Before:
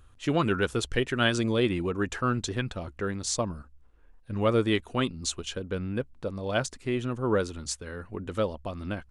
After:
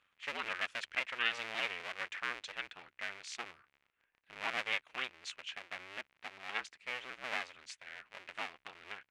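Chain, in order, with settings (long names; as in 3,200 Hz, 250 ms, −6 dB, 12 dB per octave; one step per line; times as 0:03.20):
sub-harmonics by changed cycles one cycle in 2, inverted
low-pass with resonance 2,300 Hz, resonance Q 2.2
first difference
level +1 dB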